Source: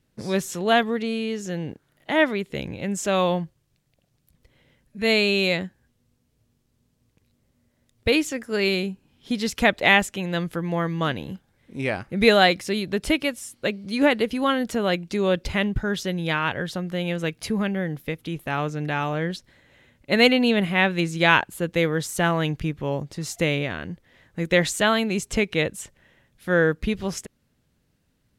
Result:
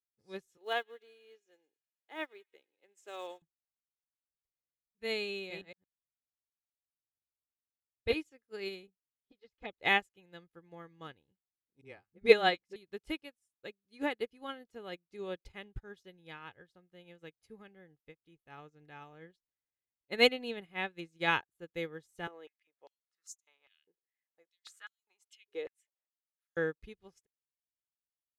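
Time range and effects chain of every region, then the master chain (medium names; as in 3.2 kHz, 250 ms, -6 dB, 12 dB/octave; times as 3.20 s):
0.57–3.42 s: block-companded coder 7-bit + high-pass 340 Hz 24 dB/octave + feedback echo behind a high-pass 109 ms, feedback 72%, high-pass 2.1 kHz, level -14.5 dB
5.39–8.20 s: chunks repeated in reverse 113 ms, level -2 dB + treble shelf 4.2 kHz -4.5 dB
8.87–9.80 s: touch-sensitive flanger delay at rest 9 ms, full sweep at -14.5 dBFS + distance through air 160 m
11.81–12.76 s: treble shelf 8 kHz -10.5 dB + hum notches 50/100/150/200 Hz + phase dispersion highs, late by 42 ms, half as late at 340 Hz
22.27–26.57 s: compression 8:1, threshold -23 dBFS + step-sequenced high-pass 5 Hz 420–6600 Hz
whole clip: comb 2.4 ms, depth 42%; upward expansion 2.5:1, over -39 dBFS; trim -4.5 dB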